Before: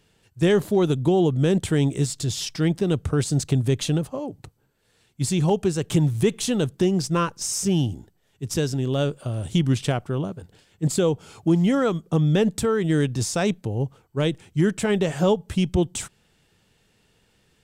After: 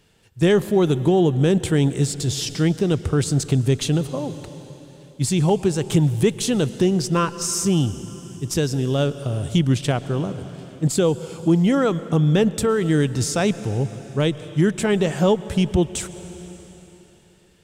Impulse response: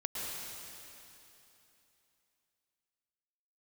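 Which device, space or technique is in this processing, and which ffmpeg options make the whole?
ducked reverb: -filter_complex "[0:a]asplit=3[link_01][link_02][link_03];[1:a]atrim=start_sample=2205[link_04];[link_02][link_04]afir=irnorm=-1:irlink=0[link_05];[link_03]apad=whole_len=777724[link_06];[link_05][link_06]sidechaincompress=threshold=-22dB:ratio=4:attack=5.8:release=1230,volume=-11dB[link_07];[link_01][link_07]amix=inputs=2:normalize=0,volume=1.5dB"

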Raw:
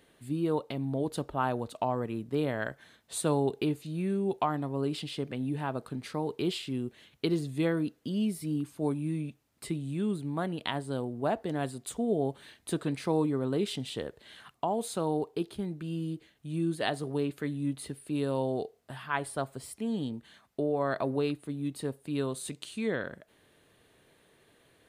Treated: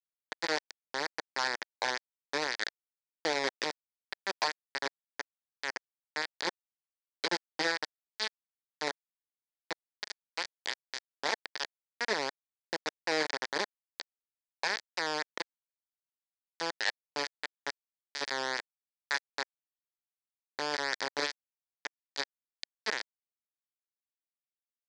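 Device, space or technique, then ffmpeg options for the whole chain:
hand-held game console: -af "acrusher=bits=3:mix=0:aa=0.000001,highpass=500,equalizer=frequency=680:width_type=q:width=4:gain=-6,equalizer=frequency=1200:width_type=q:width=4:gain=-9,equalizer=frequency=1800:width_type=q:width=4:gain=7,equalizer=frequency=2800:width_type=q:width=4:gain=-8,equalizer=frequency=4700:width_type=q:width=4:gain=7,lowpass=frequency=6000:width=0.5412,lowpass=frequency=6000:width=1.3066"

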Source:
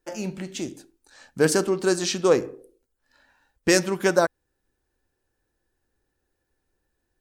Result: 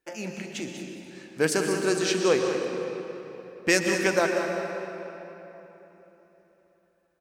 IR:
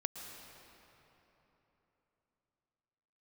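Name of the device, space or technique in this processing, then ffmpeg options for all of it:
PA in a hall: -filter_complex "[0:a]highpass=frequency=120:poles=1,equalizer=frequency=2300:width_type=o:width=0.79:gain=7.5,aecho=1:1:192:0.316[link_01];[1:a]atrim=start_sample=2205[link_02];[link_01][link_02]afir=irnorm=-1:irlink=0,volume=-3dB"

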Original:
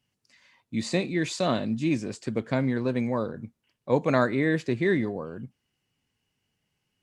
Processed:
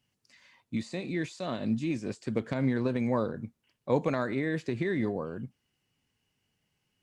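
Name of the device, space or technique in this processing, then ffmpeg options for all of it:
de-esser from a sidechain: -filter_complex "[0:a]asplit=2[link_01][link_02];[link_02]highpass=4800,apad=whole_len=309738[link_03];[link_01][link_03]sidechaincompress=threshold=-53dB:ratio=3:attack=4.6:release=81"

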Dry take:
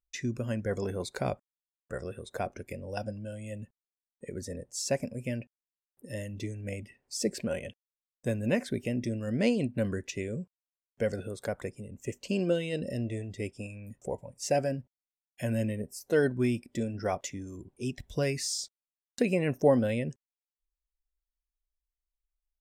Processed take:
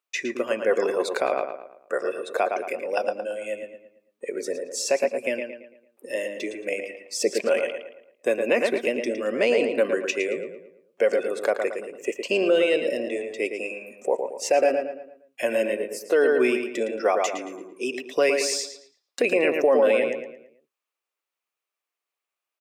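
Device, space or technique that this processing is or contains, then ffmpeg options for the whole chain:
laptop speaker: -filter_complex "[0:a]highpass=frequency=370:width=0.5412,highpass=frequency=370:width=1.3066,tiltshelf=frequency=1400:gain=4,equalizer=frequency=1200:width_type=o:width=0.3:gain=7,equalizer=frequency=2500:width_type=o:width=0.58:gain=8,asplit=2[link_01][link_02];[link_02]adelay=112,lowpass=frequency=3300:poles=1,volume=-6dB,asplit=2[link_03][link_04];[link_04]adelay=112,lowpass=frequency=3300:poles=1,volume=0.42,asplit=2[link_05][link_06];[link_06]adelay=112,lowpass=frequency=3300:poles=1,volume=0.42,asplit=2[link_07][link_08];[link_08]adelay=112,lowpass=frequency=3300:poles=1,volume=0.42,asplit=2[link_09][link_10];[link_10]adelay=112,lowpass=frequency=3300:poles=1,volume=0.42[link_11];[link_01][link_03][link_05][link_07][link_09][link_11]amix=inputs=6:normalize=0,alimiter=limit=-20dB:level=0:latency=1:release=33,volume=9dB"

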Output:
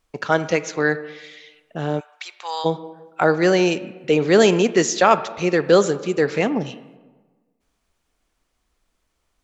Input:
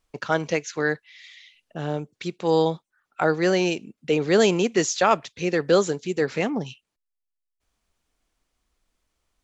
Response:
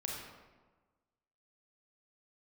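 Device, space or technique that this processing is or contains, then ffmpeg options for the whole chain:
filtered reverb send: -filter_complex "[0:a]asplit=2[link_01][link_02];[link_02]highpass=frequency=200:poles=1,lowpass=3100[link_03];[1:a]atrim=start_sample=2205[link_04];[link_03][link_04]afir=irnorm=-1:irlink=0,volume=-11dB[link_05];[link_01][link_05]amix=inputs=2:normalize=0,asplit=3[link_06][link_07][link_08];[link_06]afade=type=out:start_time=1.99:duration=0.02[link_09];[link_07]highpass=frequency=890:width=0.5412,highpass=frequency=890:width=1.3066,afade=type=in:start_time=1.99:duration=0.02,afade=type=out:start_time=2.64:duration=0.02[link_10];[link_08]afade=type=in:start_time=2.64:duration=0.02[link_11];[link_09][link_10][link_11]amix=inputs=3:normalize=0,volume=3dB"

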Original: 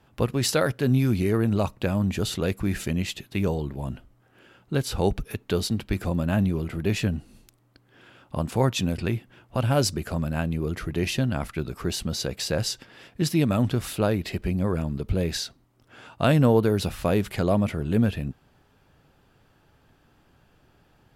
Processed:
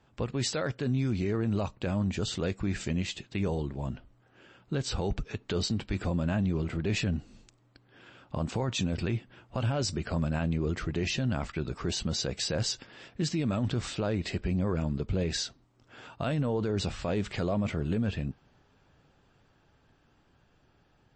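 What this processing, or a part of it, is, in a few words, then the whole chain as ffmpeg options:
low-bitrate web radio: -af "dynaudnorm=framelen=810:gausssize=9:maxgain=3.5dB,alimiter=limit=-16.5dB:level=0:latency=1:release=23,volume=-4.5dB" -ar 24000 -c:a libmp3lame -b:a 32k

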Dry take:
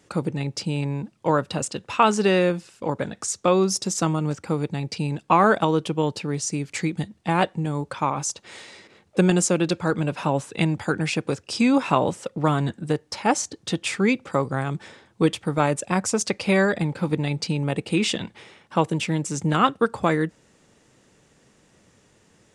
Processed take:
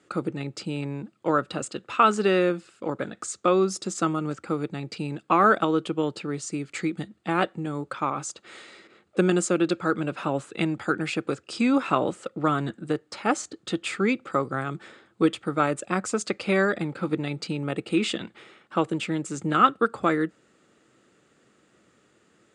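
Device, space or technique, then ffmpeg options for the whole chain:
car door speaker: -af "highpass=100,equalizer=frequency=100:width_type=q:width=4:gain=-7,equalizer=frequency=160:width_type=q:width=4:gain=-4,equalizer=frequency=340:width_type=q:width=4:gain=5,equalizer=frequency=940:width_type=q:width=4:gain=-6,equalizer=frequency=1300:width_type=q:width=4:gain=9,equalizer=frequency=5700:width_type=q:width=4:gain=-9,lowpass=frequency=8800:width=0.5412,lowpass=frequency=8800:width=1.3066,volume=-3.5dB"

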